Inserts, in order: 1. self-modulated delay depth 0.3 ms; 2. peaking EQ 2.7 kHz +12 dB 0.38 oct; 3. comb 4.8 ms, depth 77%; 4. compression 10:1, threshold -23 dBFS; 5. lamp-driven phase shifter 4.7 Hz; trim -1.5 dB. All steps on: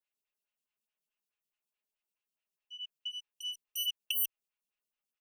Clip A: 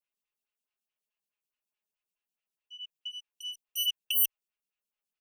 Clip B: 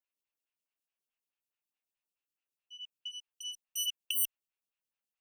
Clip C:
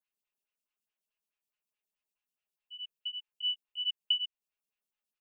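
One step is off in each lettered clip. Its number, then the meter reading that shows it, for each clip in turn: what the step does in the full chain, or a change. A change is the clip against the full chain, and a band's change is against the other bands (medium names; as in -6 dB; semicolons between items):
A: 4, mean gain reduction 2.0 dB; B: 3, momentary loudness spread change +4 LU; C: 1, loudness change +1.5 LU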